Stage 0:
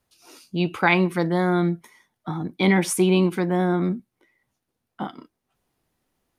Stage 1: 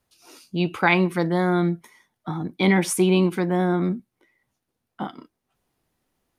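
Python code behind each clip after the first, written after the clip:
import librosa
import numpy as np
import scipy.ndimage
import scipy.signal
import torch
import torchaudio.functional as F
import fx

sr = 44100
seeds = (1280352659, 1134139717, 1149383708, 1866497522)

y = x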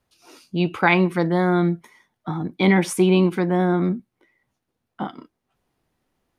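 y = fx.high_shelf(x, sr, hz=5500.0, db=-7.5)
y = y * librosa.db_to_amplitude(2.0)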